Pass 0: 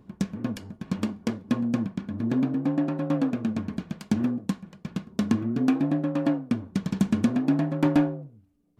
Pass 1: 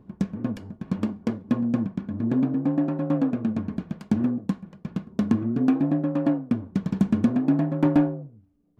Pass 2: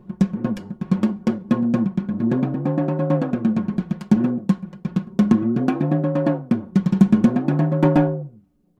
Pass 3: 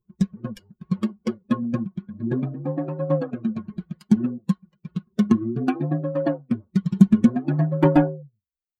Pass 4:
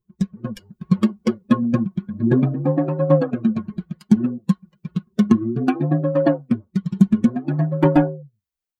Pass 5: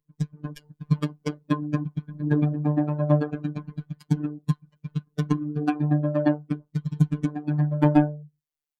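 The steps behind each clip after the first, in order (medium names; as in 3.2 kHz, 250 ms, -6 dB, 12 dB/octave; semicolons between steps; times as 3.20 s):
treble shelf 2.1 kHz -11.5 dB; trim +2 dB
comb 5.5 ms, depth 68%; trim +4.5 dB
expander on every frequency bin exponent 2; trim +2.5 dB
level rider gain up to 11.5 dB; trim -1 dB
robot voice 149 Hz; trim -2.5 dB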